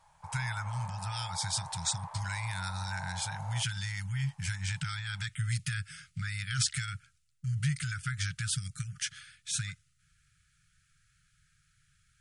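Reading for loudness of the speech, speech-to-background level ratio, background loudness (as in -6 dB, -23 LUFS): -35.0 LUFS, 9.5 dB, -44.5 LUFS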